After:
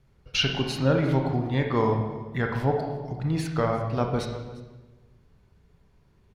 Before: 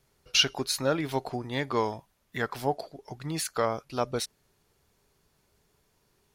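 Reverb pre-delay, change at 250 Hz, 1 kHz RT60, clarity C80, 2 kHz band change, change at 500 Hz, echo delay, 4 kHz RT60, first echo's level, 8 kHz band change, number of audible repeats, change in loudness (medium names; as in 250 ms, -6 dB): 26 ms, +7.5 dB, 1.2 s, 6.5 dB, +1.0 dB, +4.0 dB, 349 ms, 1.0 s, -20.0 dB, -9.0 dB, 1, +3.5 dB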